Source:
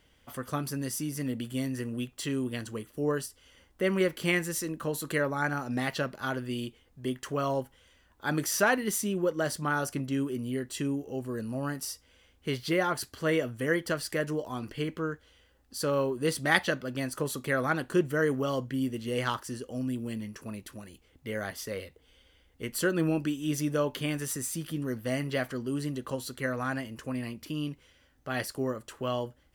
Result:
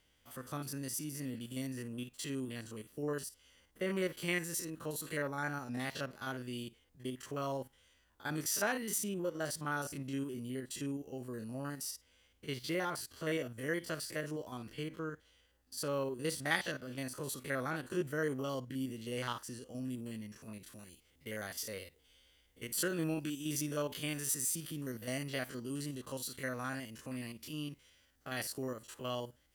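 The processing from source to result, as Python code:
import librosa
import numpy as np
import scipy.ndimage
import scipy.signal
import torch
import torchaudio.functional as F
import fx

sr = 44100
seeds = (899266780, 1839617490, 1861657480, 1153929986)

y = fx.spec_steps(x, sr, hold_ms=50)
y = fx.high_shelf(y, sr, hz=2900.0, db=fx.steps((0.0, 6.5), (20.67, 11.5)))
y = y * librosa.db_to_amplitude(-8.0)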